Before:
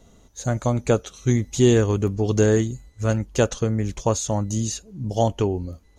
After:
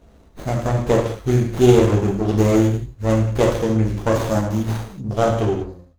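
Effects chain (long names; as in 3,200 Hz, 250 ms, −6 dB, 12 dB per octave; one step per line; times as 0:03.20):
fade-out on the ending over 0.64 s
reverb whose tail is shaped and stops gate 240 ms falling, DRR −2.5 dB
windowed peak hold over 17 samples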